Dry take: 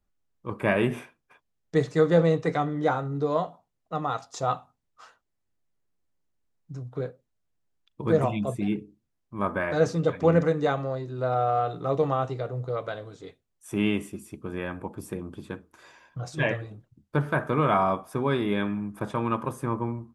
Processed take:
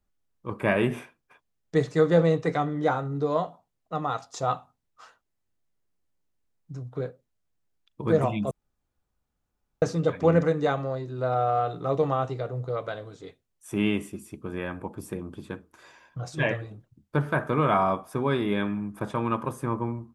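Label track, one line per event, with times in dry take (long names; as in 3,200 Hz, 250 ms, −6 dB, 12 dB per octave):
8.510000	9.820000	fill with room tone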